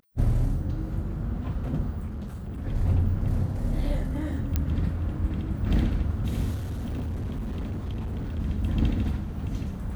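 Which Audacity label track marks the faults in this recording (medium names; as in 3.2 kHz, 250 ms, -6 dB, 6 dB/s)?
2.060000	2.580000	clipped -31 dBFS
4.560000	4.560000	pop -12 dBFS
6.540000	8.400000	clipped -28 dBFS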